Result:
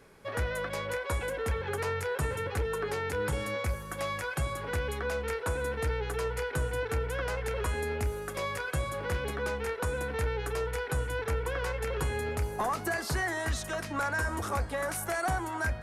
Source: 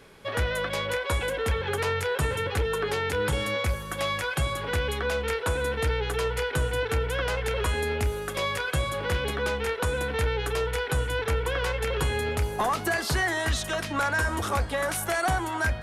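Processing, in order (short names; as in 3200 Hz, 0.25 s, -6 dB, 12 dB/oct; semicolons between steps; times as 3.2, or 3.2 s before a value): bell 3300 Hz -7 dB 0.75 oct; gain -4.5 dB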